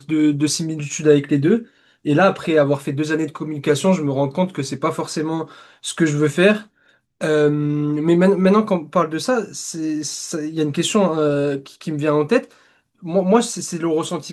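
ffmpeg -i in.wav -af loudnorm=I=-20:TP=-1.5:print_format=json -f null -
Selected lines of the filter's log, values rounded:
"input_i" : "-19.3",
"input_tp" : "-1.8",
"input_lra" : "3.0",
"input_thresh" : "-29.7",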